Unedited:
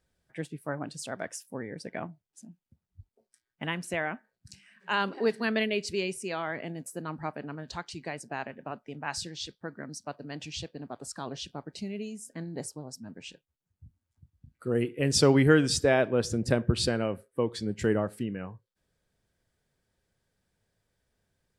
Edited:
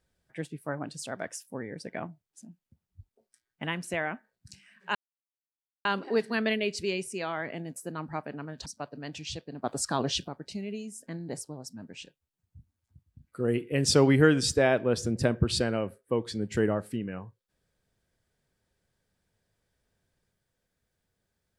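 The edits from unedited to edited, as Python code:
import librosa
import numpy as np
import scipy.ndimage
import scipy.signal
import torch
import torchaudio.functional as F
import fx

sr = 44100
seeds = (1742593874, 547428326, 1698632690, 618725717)

y = fx.edit(x, sr, fx.insert_silence(at_s=4.95, length_s=0.9),
    fx.cut(start_s=7.76, length_s=2.17),
    fx.clip_gain(start_s=10.91, length_s=0.64, db=9.0), tone=tone)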